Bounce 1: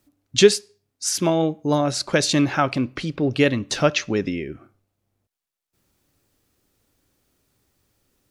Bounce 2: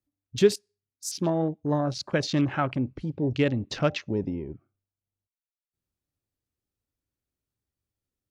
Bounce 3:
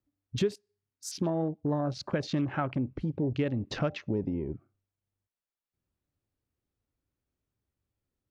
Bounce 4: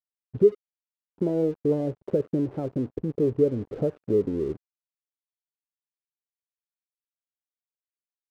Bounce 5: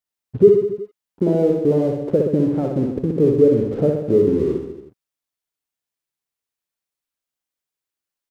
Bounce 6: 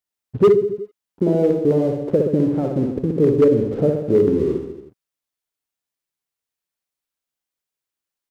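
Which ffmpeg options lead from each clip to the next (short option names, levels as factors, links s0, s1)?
-filter_complex "[0:a]afwtdn=0.0316,equalizer=f=70:w=0.55:g=8,acrossover=split=1400[s0][s1];[s1]alimiter=limit=0.211:level=0:latency=1:release=199[s2];[s0][s2]amix=inputs=2:normalize=0,volume=0.447"
-af "highshelf=f=3200:g=-11.5,acompressor=threshold=0.0251:ratio=3,volume=1.5"
-af "lowpass=f=450:t=q:w=4.7,aeval=exprs='sgn(val(0))*max(abs(val(0))-0.00376,0)':c=same"
-af "aecho=1:1:60|126|198.6|278.5|366.3:0.631|0.398|0.251|0.158|0.1,volume=2.11"
-af "asoftclip=type=hard:threshold=0.422"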